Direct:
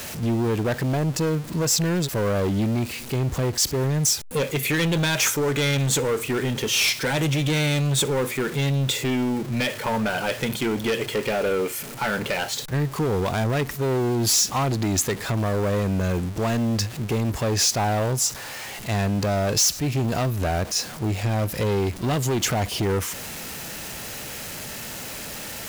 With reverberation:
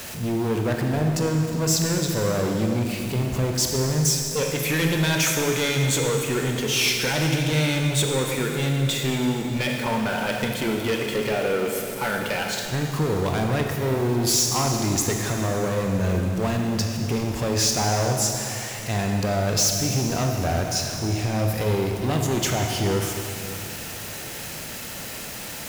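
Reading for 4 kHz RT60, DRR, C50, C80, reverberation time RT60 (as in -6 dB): 2.6 s, 2.0 dB, 3.0 dB, 4.0 dB, 2.7 s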